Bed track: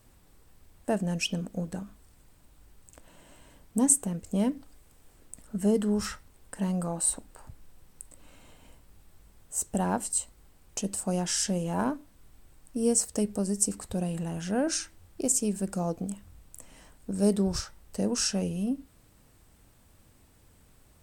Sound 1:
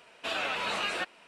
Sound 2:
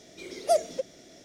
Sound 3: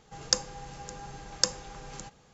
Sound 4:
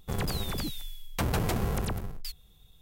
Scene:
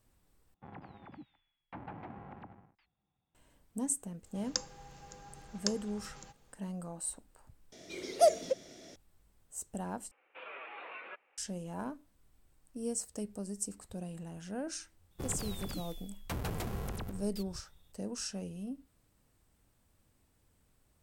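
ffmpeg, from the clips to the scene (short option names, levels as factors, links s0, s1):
-filter_complex "[4:a]asplit=2[s0][s1];[0:a]volume=0.266[s2];[s0]highpass=140,equalizer=f=290:t=q:w=4:g=6,equalizer=f=440:t=q:w=4:g=-8,equalizer=f=830:t=q:w=4:g=9,lowpass=f=2300:w=0.5412,lowpass=f=2300:w=1.3066[s3];[1:a]highpass=f=570:t=q:w=0.5412,highpass=f=570:t=q:w=1.307,lowpass=f=2900:t=q:w=0.5176,lowpass=f=2900:t=q:w=0.7071,lowpass=f=2900:t=q:w=1.932,afreqshift=-150[s4];[s2]asplit=4[s5][s6][s7][s8];[s5]atrim=end=0.544[s9];[s3]atrim=end=2.81,asetpts=PTS-STARTPTS,volume=0.15[s10];[s6]atrim=start=3.346:end=7.724[s11];[2:a]atrim=end=1.24,asetpts=PTS-STARTPTS,volume=0.891[s12];[s7]atrim=start=8.956:end=10.114[s13];[s4]atrim=end=1.27,asetpts=PTS-STARTPTS,volume=0.211[s14];[s8]atrim=start=11.376[s15];[3:a]atrim=end=2.33,asetpts=PTS-STARTPTS,volume=0.335,afade=t=in:d=0.004:c=hsin,afade=t=out:st=2.326:d=0.004:c=hsin,adelay=4230[s16];[s1]atrim=end=2.81,asetpts=PTS-STARTPTS,volume=0.355,afade=t=in:d=0.004:c=hsin,afade=t=out:st=2.806:d=0.004:c=hsin,adelay=15110[s17];[s9][s10]acrossfade=d=0.004:c1=hsin:c2=hsin[s18];[s18][s11]acrossfade=d=0.004:c1=hsin:c2=hsin[s19];[s19][s12]acrossfade=d=0.004:c1=hsin:c2=hsin[s20];[s20][s13]acrossfade=d=0.004:c1=hsin:c2=hsin[s21];[s21][s14]acrossfade=d=0.004:c1=hsin:c2=hsin[s22];[s22][s15]acrossfade=d=0.004:c1=hsin:c2=hsin[s23];[s23][s16][s17]amix=inputs=3:normalize=0"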